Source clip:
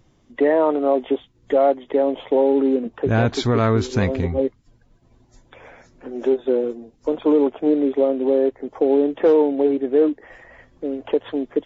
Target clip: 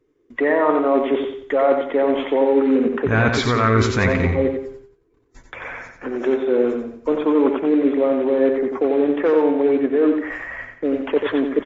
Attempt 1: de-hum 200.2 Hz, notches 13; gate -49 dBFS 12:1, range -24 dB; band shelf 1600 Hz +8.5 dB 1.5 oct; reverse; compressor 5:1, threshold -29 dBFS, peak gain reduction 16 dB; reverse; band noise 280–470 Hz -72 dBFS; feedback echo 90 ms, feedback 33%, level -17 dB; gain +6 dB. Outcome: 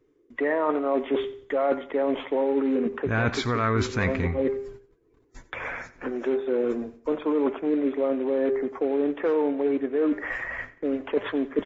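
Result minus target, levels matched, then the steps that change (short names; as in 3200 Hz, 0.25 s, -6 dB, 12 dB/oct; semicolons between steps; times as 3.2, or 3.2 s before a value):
echo-to-direct -11.5 dB; compressor: peak gain reduction +6.5 dB
change: compressor 5:1, threshold -21 dBFS, peak gain reduction 9.5 dB; change: feedback echo 90 ms, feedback 33%, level -5.5 dB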